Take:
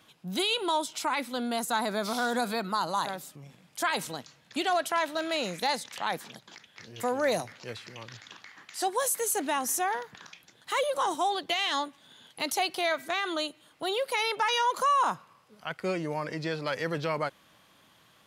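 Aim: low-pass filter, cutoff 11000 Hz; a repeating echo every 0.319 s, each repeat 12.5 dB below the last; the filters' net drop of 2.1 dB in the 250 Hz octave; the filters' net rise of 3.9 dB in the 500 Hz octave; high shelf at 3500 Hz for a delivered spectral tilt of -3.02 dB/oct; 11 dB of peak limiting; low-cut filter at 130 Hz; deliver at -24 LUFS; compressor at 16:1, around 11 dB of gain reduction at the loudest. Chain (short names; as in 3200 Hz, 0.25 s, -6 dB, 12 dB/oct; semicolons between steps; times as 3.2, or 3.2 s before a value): HPF 130 Hz; LPF 11000 Hz; bell 250 Hz -5 dB; bell 500 Hz +6 dB; high shelf 3500 Hz -3.5 dB; compressor 16:1, threshold -31 dBFS; limiter -29.5 dBFS; feedback echo 0.319 s, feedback 24%, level -12.5 dB; gain +15.5 dB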